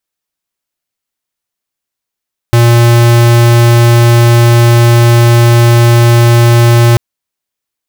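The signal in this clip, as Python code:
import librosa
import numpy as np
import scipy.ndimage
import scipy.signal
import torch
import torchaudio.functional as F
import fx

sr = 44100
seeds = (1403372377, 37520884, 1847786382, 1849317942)

y = fx.tone(sr, length_s=4.44, wave='square', hz=118.0, level_db=-5.0)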